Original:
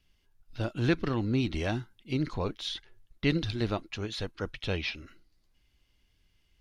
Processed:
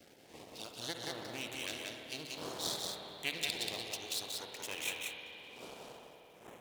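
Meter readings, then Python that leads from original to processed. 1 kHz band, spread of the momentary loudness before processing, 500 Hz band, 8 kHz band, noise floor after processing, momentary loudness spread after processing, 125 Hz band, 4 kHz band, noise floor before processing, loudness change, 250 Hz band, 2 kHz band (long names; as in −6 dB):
−6.0 dB, 8 LU, −11.0 dB, +10.5 dB, −59 dBFS, 16 LU, −23.0 dB, 0.0 dB, −71 dBFS, −7.5 dB, −18.0 dB, −4.0 dB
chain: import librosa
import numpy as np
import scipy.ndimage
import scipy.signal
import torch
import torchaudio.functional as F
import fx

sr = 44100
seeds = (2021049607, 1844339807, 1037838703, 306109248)

p1 = fx.dmg_wind(x, sr, seeds[0], corner_hz=390.0, level_db=-35.0)
p2 = fx.peak_eq(p1, sr, hz=1300.0, db=-8.0, octaves=1.2)
p3 = np.maximum(p2, 0.0)
p4 = np.diff(p3, prepend=0.0)
p5 = fx.filter_lfo_notch(p4, sr, shape='saw_up', hz=0.6, low_hz=970.0, high_hz=5500.0, q=1.3)
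p6 = p5 + fx.echo_single(p5, sr, ms=182, db=-3.5, dry=0)
p7 = fx.rev_spring(p6, sr, rt60_s=3.3, pass_ms=(52, 60), chirp_ms=20, drr_db=3.5)
p8 = fx.end_taper(p7, sr, db_per_s=270.0)
y = p8 * librosa.db_to_amplitude(10.5)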